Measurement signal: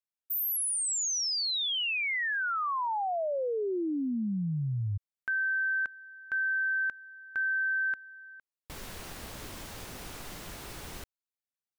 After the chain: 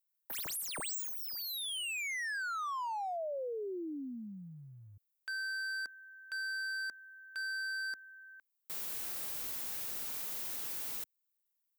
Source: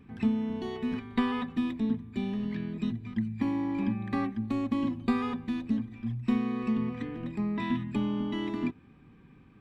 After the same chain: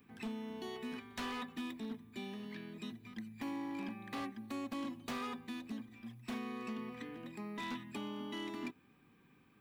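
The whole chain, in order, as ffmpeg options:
ffmpeg -i in.wav -filter_complex "[0:a]acrossover=split=230|1600[link_01][link_02][link_03];[link_01]acompressor=threshold=-38dB:ratio=6:attack=0.17:release=228:knee=2.83:detection=peak[link_04];[link_04][link_02][link_03]amix=inputs=3:normalize=0,aemphasis=mode=production:type=bsi,aeval=exprs='0.0376*(abs(mod(val(0)/0.0376+3,4)-2)-1)':channel_layout=same,volume=-6dB" out.wav

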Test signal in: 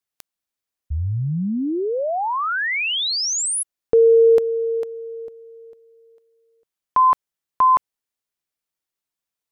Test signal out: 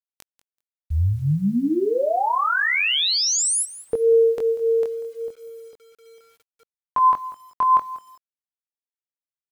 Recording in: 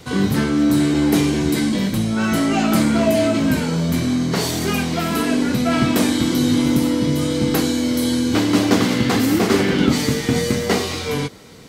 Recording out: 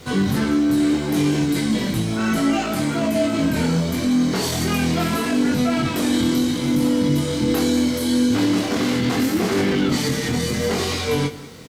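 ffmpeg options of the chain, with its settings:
ffmpeg -i in.wav -filter_complex "[0:a]alimiter=limit=-14.5dB:level=0:latency=1:release=27,aresample=32000,aresample=44100,flanger=delay=20:depth=4.6:speed=0.72,asplit=2[link_01][link_02];[link_02]aecho=0:1:191|382:0.141|0.024[link_03];[link_01][link_03]amix=inputs=2:normalize=0,acrusher=bits=9:mix=0:aa=0.000001,volume=4.5dB" out.wav

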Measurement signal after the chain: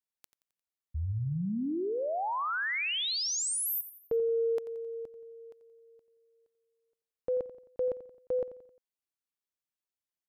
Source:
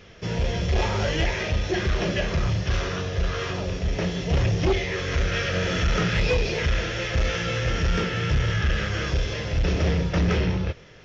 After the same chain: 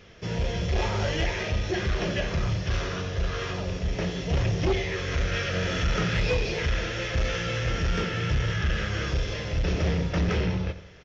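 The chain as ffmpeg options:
ffmpeg -i in.wav -af "aecho=1:1:88|176|264|352:0.2|0.0898|0.0404|0.0182,acontrast=29,volume=-8dB" out.wav

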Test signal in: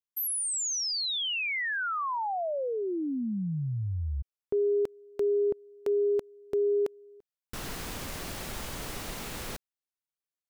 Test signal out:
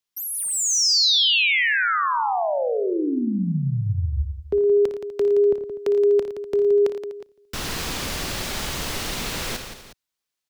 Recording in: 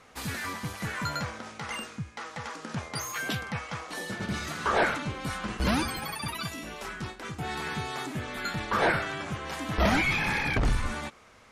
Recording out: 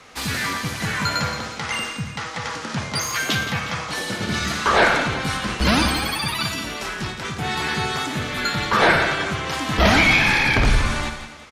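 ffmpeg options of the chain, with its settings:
ffmpeg -i in.wav -filter_complex "[0:a]acrossover=split=100|610|5400[link_01][link_02][link_03][link_04];[link_03]aemphasis=mode=production:type=75kf[link_05];[link_04]asoftclip=type=tanh:threshold=-37dB[link_06];[link_01][link_02][link_05][link_06]amix=inputs=4:normalize=0,aecho=1:1:57|85|113|172|247|362:0.282|0.2|0.211|0.335|0.141|0.158,volume=7dB" out.wav

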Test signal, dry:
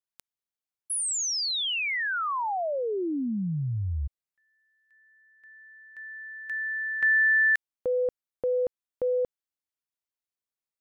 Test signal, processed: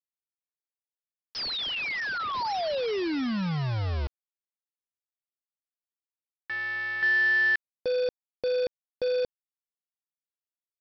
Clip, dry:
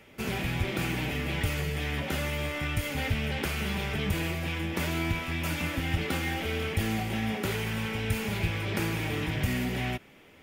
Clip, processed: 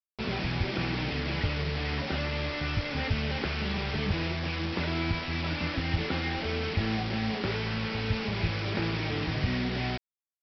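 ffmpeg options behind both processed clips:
ffmpeg -i in.wav -af "highshelf=frequency=3300:gain=-6.5,aresample=11025,acrusher=bits=5:mix=0:aa=0.000001,aresample=44100" out.wav

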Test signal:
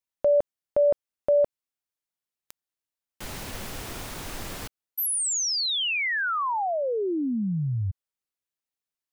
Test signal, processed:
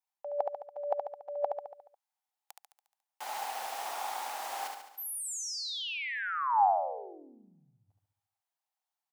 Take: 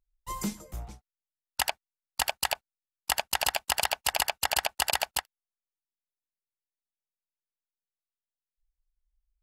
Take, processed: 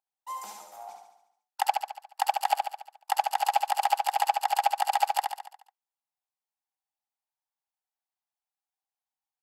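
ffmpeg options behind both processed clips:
ffmpeg -i in.wav -af "areverse,acompressor=threshold=-35dB:ratio=16:attack=64:release=251:knee=6:detection=peak,areverse,highpass=frequency=800:width_type=q:width=7.2,aecho=1:1:71|142|213|284|355|426|497:0.596|0.328|0.18|0.0991|0.0545|0.03|0.0165,volume=-4dB" out.wav

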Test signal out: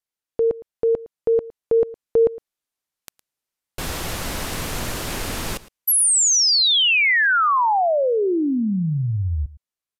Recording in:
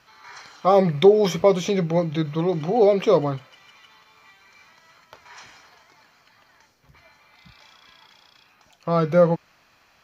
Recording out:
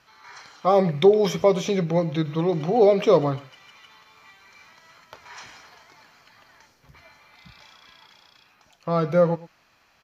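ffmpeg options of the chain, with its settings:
ffmpeg -i in.wav -af "dynaudnorm=framelen=130:gausssize=31:maxgain=5dB,aecho=1:1:111:0.112,aresample=32000,aresample=44100,volume=-2dB" out.wav

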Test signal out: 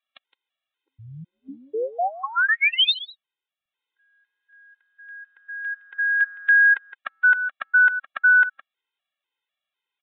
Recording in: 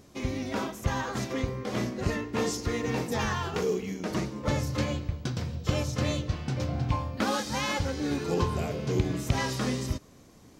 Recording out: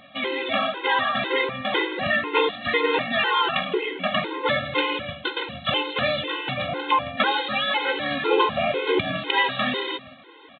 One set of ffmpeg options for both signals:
ffmpeg -i in.wav -filter_complex "[0:a]highpass=710,equalizer=frequency=1000:width=0.32:gain=-10,apsyclip=27dB,asplit=2[link_01][link_02];[link_02]aecho=0:1:164:0.168[link_03];[link_01][link_03]amix=inputs=2:normalize=0,acompressor=threshold=-12dB:ratio=16,aresample=8000,aresample=44100,afftfilt=real='re*gt(sin(2*PI*2*pts/sr)*(1-2*mod(floor(b*sr/1024/270),2)),0)':imag='im*gt(sin(2*PI*2*pts/sr)*(1-2*mod(floor(b*sr/1024/270),2)),0)':win_size=1024:overlap=0.75" out.wav

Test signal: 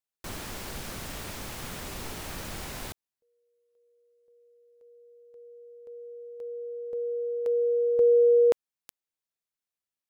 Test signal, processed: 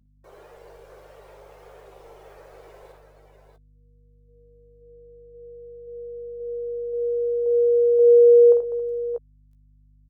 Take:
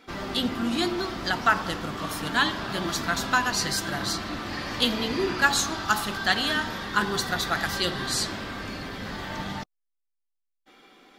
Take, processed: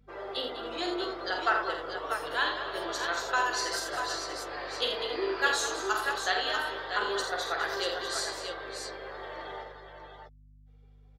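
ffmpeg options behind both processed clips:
ffmpeg -i in.wav -filter_complex "[0:a]lowshelf=frequency=310:width_type=q:width=3:gain=-13,afftdn=noise_reduction=19:noise_floor=-38,aeval=exprs='val(0)+0.00282*(sin(2*PI*50*n/s)+sin(2*PI*2*50*n/s)/2+sin(2*PI*3*50*n/s)/3+sin(2*PI*4*50*n/s)/4+sin(2*PI*5*50*n/s)/5)':channel_layout=same,asplit=2[link_01][link_02];[link_02]adelay=15,volume=-10dB[link_03];[link_01][link_03]amix=inputs=2:normalize=0,aecho=1:1:48|82|199|273|623|641:0.501|0.422|0.299|0.15|0.168|0.473,volume=-8dB" out.wav

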